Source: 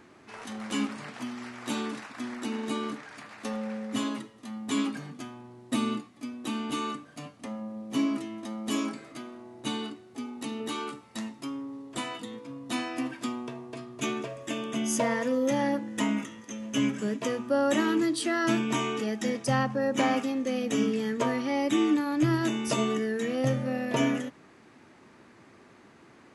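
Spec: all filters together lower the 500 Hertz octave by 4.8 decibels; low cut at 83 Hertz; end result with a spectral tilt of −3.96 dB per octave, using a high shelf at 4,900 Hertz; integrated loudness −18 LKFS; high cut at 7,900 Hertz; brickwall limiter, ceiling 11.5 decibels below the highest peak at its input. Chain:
high-pass filter 83 Hz
low-pass filter 7,900 Hz
parametric band 500 Hz −6 dB
high-shelf EQ 4,900 Hz +6.5 dB
level +17.5 dB
brickwall limiter −8 dBFS

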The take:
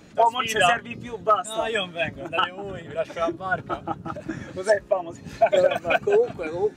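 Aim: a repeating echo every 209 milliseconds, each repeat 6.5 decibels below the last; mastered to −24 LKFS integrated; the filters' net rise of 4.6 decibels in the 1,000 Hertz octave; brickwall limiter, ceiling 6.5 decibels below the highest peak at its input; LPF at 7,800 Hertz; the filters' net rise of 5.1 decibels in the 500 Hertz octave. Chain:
low-pass filter 7,800 Hz
parametric band 500 Hz +5 dB
parametric band 1,000 Hz +4.5 dB
brickwall limiter −9 dBFS
repeating echo 209 ms, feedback 47%, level −6.5 dB
level −2.5 dB

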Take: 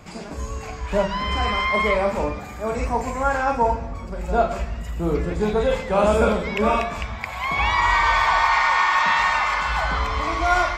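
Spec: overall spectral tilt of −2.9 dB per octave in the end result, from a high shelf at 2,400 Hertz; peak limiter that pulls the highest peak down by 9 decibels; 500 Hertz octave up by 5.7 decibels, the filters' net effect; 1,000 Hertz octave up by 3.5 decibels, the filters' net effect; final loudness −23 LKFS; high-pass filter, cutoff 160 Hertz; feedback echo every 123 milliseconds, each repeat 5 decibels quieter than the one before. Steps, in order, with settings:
high-pass filter 160 Hz
parametric band 500 Hz +6.5 dB
parametric band 1,000 Hz +3.5 dB
high-shelf EQ 2,400 Hz −6.5 dB
brickwall limiter −12 dBFS
repeating echo 123 ms, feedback 56%, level −5 dB
level −3 dB

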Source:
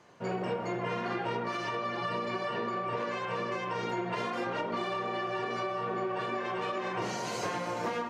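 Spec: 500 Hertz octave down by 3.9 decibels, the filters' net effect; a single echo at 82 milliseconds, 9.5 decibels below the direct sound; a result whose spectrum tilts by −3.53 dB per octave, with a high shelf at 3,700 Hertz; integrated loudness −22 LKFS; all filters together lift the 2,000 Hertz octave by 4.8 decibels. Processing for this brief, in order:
parametric band 500 Hz −5.5 dB
parametric band 2,000 Hz +4 dB
high-shelf EQ 3,700 Hz +8.5 dB
single-tap delay 82 ms −9.5 dB
level +10 dB

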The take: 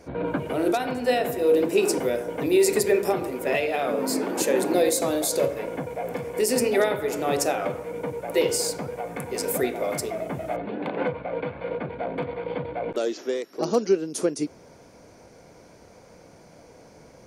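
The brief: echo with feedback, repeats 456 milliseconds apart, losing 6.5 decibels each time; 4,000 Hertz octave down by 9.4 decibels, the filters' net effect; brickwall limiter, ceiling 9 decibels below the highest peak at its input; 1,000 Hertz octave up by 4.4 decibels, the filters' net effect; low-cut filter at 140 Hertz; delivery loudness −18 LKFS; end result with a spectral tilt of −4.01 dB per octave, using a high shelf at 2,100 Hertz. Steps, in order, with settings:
high-pass filter 140 Hz
parametric band 1,000 Hz +8 dB
high-shelf EQ 2,100 Hz −5 dB
parametric band 4,000 Hz −8 dB
brickwall limiter −17 dBFS
repeating echo 456 ms, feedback 47%, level −6.5 dB
level +8.5 dB

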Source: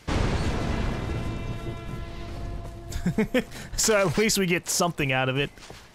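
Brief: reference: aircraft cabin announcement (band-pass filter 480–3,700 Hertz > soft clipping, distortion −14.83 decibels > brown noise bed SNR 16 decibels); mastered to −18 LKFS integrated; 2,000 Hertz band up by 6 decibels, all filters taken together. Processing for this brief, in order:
band-pass filter 480–3,700 Hz
parametric band 2,000 Hz +8 dB
soft clipping −14.5 dBFS
brown noise bed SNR 16 dB
level +9.5 dB

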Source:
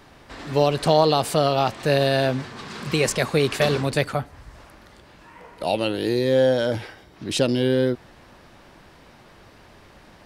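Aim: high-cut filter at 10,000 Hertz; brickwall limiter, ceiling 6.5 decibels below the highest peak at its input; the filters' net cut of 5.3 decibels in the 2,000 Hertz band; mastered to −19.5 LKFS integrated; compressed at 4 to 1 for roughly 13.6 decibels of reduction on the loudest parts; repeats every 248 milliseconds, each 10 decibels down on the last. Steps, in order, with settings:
low-pass filter 10,000 Hz
parametric band 2,000 Hz −7 dB
downward compressor 4 to 1, threshold −31 dBFS
brickwall limiter −24 dBFS
repeating echo 248 ms, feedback 32%, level −10 dB
level +16 dB

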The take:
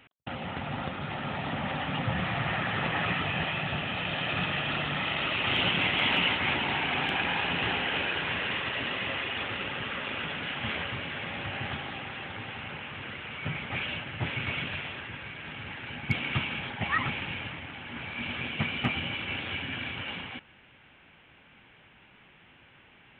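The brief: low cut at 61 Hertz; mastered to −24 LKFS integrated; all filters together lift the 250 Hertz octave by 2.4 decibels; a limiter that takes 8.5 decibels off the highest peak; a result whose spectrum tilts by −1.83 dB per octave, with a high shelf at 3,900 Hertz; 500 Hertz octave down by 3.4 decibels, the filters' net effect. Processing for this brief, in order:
high-pass filter 61 Hz
parametric band 250 Hz +4.5 dB
parametric band 500 Hz −6 dB
high-shelf EQ 3,900 Hz +7 dB
level +6.5 dB
brickwall limiter −14 dBFS

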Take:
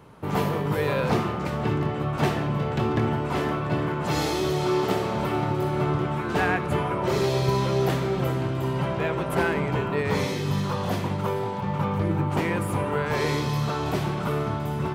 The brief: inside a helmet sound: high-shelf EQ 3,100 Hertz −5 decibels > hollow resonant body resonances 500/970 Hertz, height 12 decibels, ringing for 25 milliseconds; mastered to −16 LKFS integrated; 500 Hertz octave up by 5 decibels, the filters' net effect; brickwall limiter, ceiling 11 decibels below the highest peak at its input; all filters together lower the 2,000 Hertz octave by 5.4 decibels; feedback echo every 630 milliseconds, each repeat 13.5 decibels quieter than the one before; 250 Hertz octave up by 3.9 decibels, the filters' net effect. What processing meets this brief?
parametric band 250 Hz +4 dB
parametric band 500 Hz +5.5 dB
parametric band 2,000 Hz −6 dB
brickwall limiter −18 dBFS
high-shelf EQ 3,100 Hz −5 dB
repeating echo 630 ms, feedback 21%, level −13.5 dB
hollow resonant body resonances 500/970 Hz, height 12 dB, ringing for 25 ms
level +5.5 dB

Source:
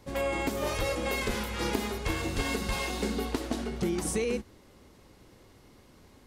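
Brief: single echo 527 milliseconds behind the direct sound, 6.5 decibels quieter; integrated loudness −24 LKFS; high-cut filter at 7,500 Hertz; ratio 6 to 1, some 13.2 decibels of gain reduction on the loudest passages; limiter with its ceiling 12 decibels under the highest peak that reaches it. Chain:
low-pass filter 7,500 Hz
downward compressor 6 to 1, threshold −39 dBFS
brickwall limiter −38.5 dBFS
single-tap delay 527 ms −6.5 dB
level +23.5 dB

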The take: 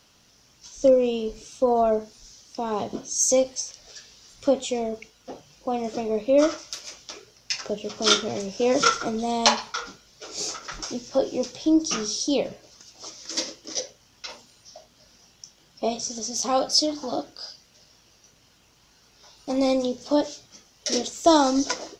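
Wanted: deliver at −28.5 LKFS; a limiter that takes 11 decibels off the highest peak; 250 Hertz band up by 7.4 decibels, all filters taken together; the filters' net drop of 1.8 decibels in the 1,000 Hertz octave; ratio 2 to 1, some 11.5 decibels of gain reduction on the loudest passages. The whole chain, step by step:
parametric band 250 Hz +9 dB
parametric band 1,000 Hz −3.5 dB
downward compressor 2 to 1, threshold −32 dBFS
level +4.5 dB
brickwall limiter −17 dBFS

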